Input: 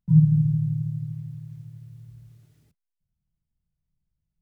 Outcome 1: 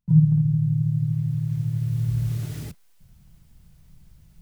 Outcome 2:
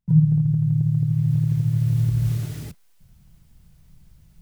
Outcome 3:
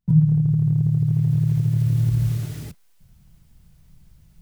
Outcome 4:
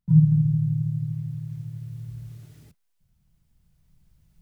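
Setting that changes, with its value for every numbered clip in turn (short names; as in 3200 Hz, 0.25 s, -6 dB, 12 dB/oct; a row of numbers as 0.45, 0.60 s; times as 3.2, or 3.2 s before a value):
recorder AGC, rising by: 13, 33, 90, 5.1 dB/s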